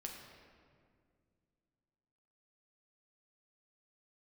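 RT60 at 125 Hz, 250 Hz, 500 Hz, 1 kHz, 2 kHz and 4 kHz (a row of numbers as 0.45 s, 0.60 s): 3.1 s, 3.0 s, 2.4 s, 1.9 s, 1.7 s, 1.2 s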